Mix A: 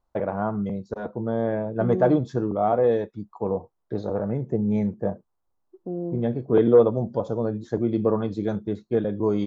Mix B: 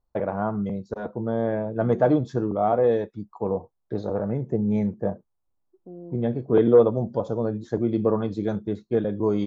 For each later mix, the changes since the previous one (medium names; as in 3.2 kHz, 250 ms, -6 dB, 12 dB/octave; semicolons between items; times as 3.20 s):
second voice -10.5 dB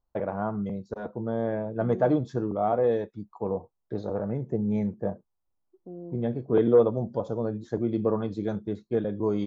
first voice -3.5 dB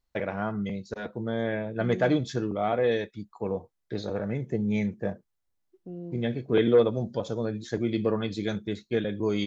second voice: remove high-pass 210 Hz; master: add resonant high shelf 1.5 kHz +12.5 dB, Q 1.5